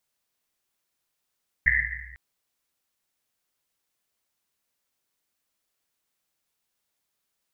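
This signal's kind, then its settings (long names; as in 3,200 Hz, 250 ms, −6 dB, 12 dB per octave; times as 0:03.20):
drum after Risset length 0.50 s, pitch 62 Hz, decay 1.94 s, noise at 1,900 Hz, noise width 360 Hz, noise 75%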